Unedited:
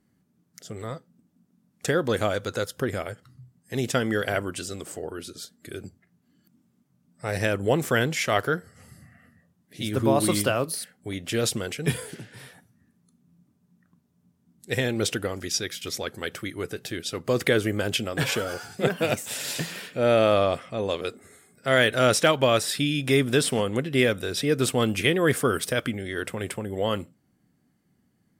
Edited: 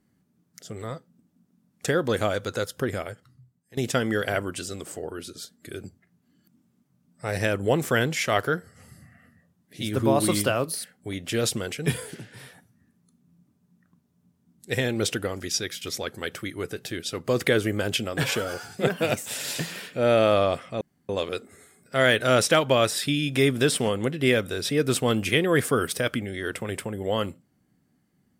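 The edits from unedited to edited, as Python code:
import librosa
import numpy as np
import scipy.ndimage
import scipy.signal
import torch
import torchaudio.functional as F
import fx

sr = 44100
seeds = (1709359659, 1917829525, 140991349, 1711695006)

y = fx.edit(x, sr, fx.fade_out_to(start_s=2.93, length_s=0.84, floor_db=-17.5),
    fx.insert_room_tone(at_s=20.81, length_s=0.28), tone=tone)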